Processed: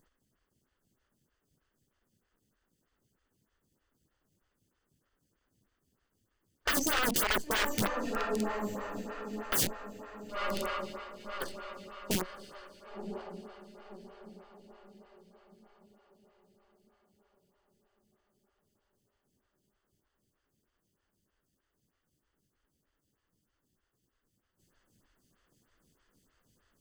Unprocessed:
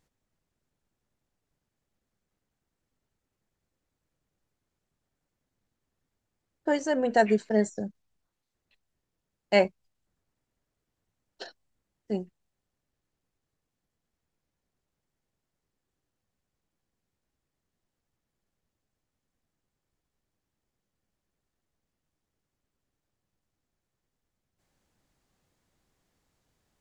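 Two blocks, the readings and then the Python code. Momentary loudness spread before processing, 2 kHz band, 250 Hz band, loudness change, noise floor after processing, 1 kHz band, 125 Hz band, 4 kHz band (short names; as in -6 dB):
22 LU, +1.5 dB, -5.0 dB, -6.5 dB, -82 dBFS, -1.5 dB, -1.5 dB, +6.0 dB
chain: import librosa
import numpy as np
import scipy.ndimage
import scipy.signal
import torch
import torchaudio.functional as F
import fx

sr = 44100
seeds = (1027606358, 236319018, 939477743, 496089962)

p1 = fx.lower_of_two(x, sr, delay_ms=0.64)
p2 = fx.rider(p1, sr, range_db=10, speed_s=0.5)
p3 = p2 + fx.echo_diffused(p2, sr, ms=1030, feedback_pct=42, wet_db=-10, dry=0)
p4 = (np.mod(10.0 ** (29.0 / 20.0) * p3 + 1.0, 2.0) - 1.0) / 10.0 ** (29.0 / 20.0)
p5 = fx.stagger_phaser(p4, sr, hz=3.2)
y = p5 * 10.0 ** (9.0 / 20.0)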